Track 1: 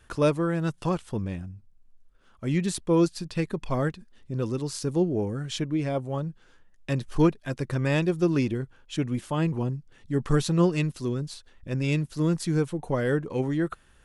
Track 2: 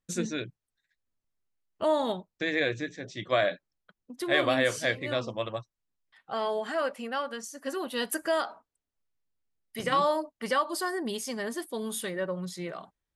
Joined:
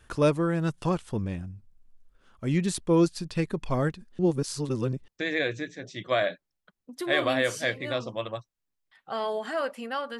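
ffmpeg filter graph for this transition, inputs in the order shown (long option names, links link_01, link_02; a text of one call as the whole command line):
ffmpeg -i cue0.wav -i cue1.wav -filter_complex "[0:a]apad=whole_dur=10.19,atrim=end=10.19,asplit=2[link_01][link_02];[link_01]atrim=end=4.192[link_03];[link_02]atrim=start=4.188:end=5.082,asetpts=PTS-STARTPTS,areverse[link_04];[1:a]atrim=start=2.288:end=7.4[link_05];[link_03][link_04]acrossfade=duration=0.004:curve1=hsin:curve2=hsin[link_06];[link_06][link_05]acrossfade=duration=0.004:curve1=hsin:curve2=hsin" out.wav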